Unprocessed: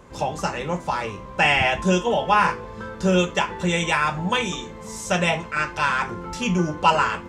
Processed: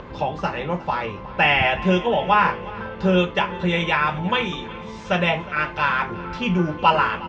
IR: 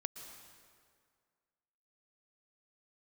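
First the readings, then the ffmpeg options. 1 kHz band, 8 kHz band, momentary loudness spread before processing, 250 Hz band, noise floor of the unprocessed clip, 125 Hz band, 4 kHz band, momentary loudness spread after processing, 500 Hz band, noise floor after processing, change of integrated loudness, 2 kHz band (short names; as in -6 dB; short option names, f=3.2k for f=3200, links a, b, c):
+1.0 dB, under -15 dB, 10 LU, +1.0 dB, -38 dBFS, +1.0 dB, +0.5 dB, 10 LU, +1.0 dB, -36 dBFS, +1.0 dB, +1.0 dB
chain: -af "aecho=1:1:361|722|1083|1444|1805:0.112|0.0617|0.0339|0.0187|0.0103,acompressor=mode=upward:threshold=-31dB:ratio=2.5,lowpass=f=4k:w=0.5412,lowpass=f=4k:w=1.3066,volume=1dB"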